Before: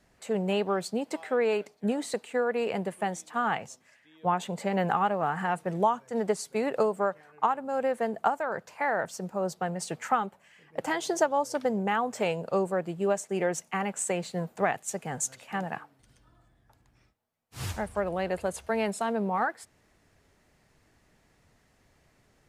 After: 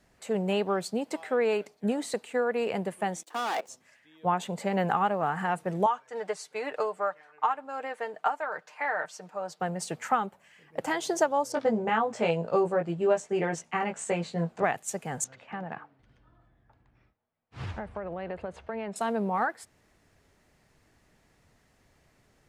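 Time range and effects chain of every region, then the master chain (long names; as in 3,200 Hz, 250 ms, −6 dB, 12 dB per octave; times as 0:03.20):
0:03.23–0:03.69: leveller curve on the samples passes 5 + output level in coarse steps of 23 dB + four-pole ladder high-pass 300 Hz, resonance 35%
0:05.86–0:09.60: resonant band-pass 2,000 Hz, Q 0.51 + comb filter 6.6 ms, depth 53%
0:11.52–0:14.64: high-frequency loss of the air 80 metres + double-tracking delay 18 ms −3 dB
0:15.24–0:18.96: low-pass filter 2,600 Hz + downward compressor 5 to 1, threshold −31 dBFS
whole clip: no processing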